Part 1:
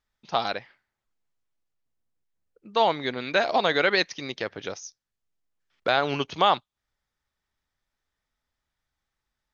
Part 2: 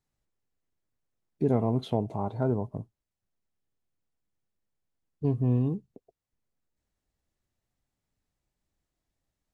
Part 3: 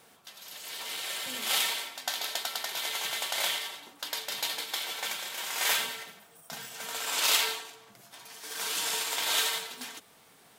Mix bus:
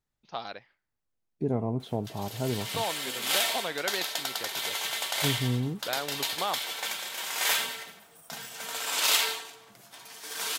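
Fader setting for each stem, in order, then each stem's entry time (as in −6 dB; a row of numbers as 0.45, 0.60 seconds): −11.0, −3.5, +1.0 decibels; 0.00, 0.00, 1.80 seconds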